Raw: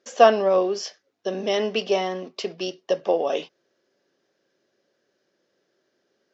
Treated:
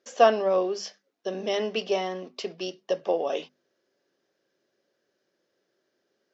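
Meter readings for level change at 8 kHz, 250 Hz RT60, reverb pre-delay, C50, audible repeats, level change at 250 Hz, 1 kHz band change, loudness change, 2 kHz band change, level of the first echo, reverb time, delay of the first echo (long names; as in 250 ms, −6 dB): can't be measured, no reverb audible, no reverb audible, no reverb audible, no echo audible, −4.0 dB, −4.0 dB, −4.0 dB, −4.0 dB, no echo audible, no reverb audible, no echo audible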